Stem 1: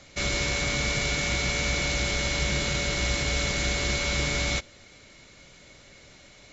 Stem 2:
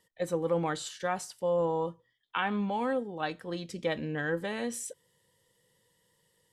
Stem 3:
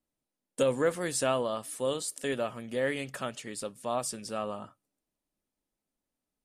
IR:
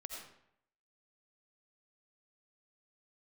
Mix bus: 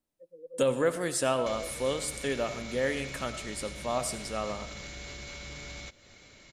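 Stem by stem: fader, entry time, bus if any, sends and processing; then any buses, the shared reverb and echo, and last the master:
-3.0 dB, 1.30 s, no send, limiter -20.5 dBFS, peak gain reduction 6 dB; compressor 3:1, threshold -39 dBFS, peak gain reduction 9.5 dB; soft clip -27.5 dBFS, distortion -27 dB
-9.5 dB, 0.00 s, no send, LFO low-pass square 6.5 Hz 470–3100 Hz; spectral expander 2.5:1; auto duck -10 dB, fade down 0.25 s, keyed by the third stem
-2.0 dB, 0.00 s, send -4 dB, dry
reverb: on, RT60 0.70 s, pre-delay 45 ms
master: dry

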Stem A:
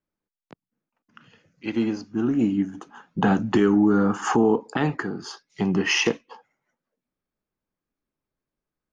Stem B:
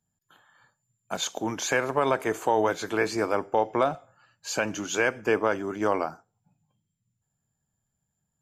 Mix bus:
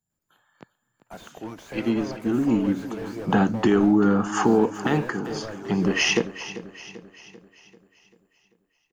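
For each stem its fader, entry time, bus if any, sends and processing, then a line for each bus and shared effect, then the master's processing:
0.0 dB, 0.10 s, no send, echo send -14.5 dB, dry
-5.5 dB, 0.00 s, no send, echo send -12.5 dB, slew limiter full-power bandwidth 26 Hz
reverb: off
echo: feedback echo 0.391 s, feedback 51%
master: high shelf 12000 Hz +8 dB

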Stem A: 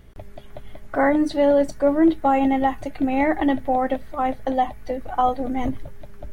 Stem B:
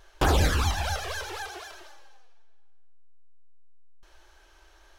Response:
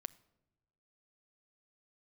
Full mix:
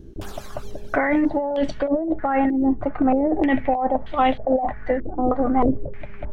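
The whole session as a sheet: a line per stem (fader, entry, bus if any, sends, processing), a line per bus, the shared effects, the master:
+1.0 dB, 0.00 s, no send, stepped low-pass 3.2 Hz 340–3200 Hz
-16.5 dB, 0.00 s, no send, tilt +2.5 dB/oct; auto duck -18 dB, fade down 1.15 s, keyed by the first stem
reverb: off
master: negative-ratio compressor -19 dBFS, ratio -1

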